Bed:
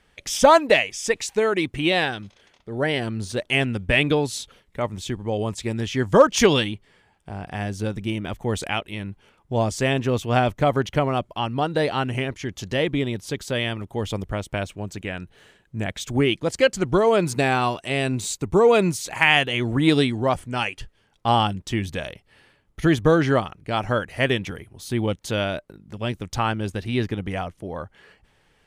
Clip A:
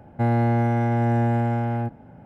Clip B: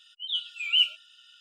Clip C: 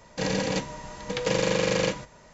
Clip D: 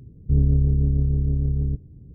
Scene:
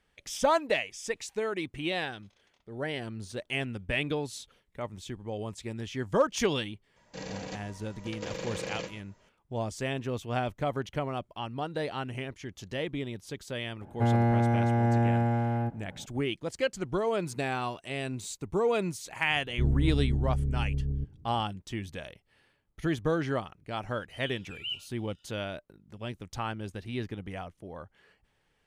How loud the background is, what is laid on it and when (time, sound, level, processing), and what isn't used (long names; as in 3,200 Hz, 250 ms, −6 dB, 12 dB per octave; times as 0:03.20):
bed −11 dB
0:06.96: mix in C −13 dB
0:13.81: mix in A −4 dB
0:19.29: mix in D −8 dB
0:23.91: mix in B −14 dB